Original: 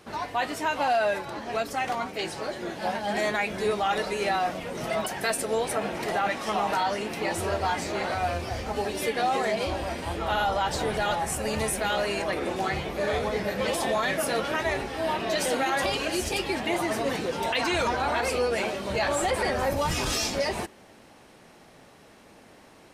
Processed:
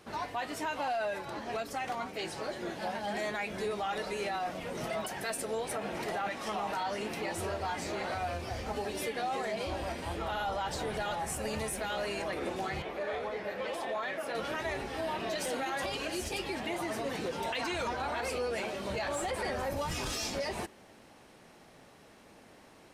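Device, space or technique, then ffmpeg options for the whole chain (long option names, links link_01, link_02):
soft clipper into limiter: -filter_complex "[0:a]asoftclip=type=tanh:threshold=-15.5dB,alimiter=limit=-22.5dB:level=0:latency=1:release=198,asettb=1/sr,asplit=3[link_01][link_02][link_03];[link_01]atrim=end=12.824[link_04];[link_02]atrim=start=12.82:end=14.35,asetpts=PTS-STARTPTS,afade=type=in:duration=0.004:curve=qsin,afade=type=out:start_time=1.526:duration=0.004:curve=qsin,bass=frequency=250:gain=-12,treble=frequency=4000:gain=-11[link_05];[link_03]atrim=start=14.346[link_06];[link_04][link_05]acrossfade=duration=0.004:curve1=hsin:curve2=qsin[link_07];[link_07][link_06]acrossfade=duration=0.004:curve1=qsin:curve2=hsin,volume=-4dB"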